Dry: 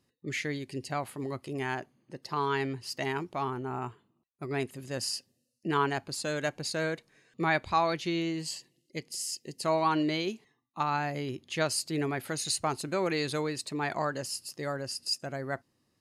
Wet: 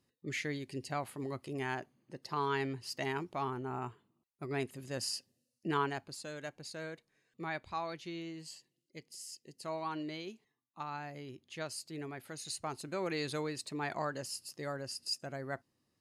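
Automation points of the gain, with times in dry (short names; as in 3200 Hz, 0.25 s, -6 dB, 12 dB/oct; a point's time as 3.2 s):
5.71 s -4 dB
6.31 s -12 dB
12.28 s -12 dB
13.24 s -5.5 dB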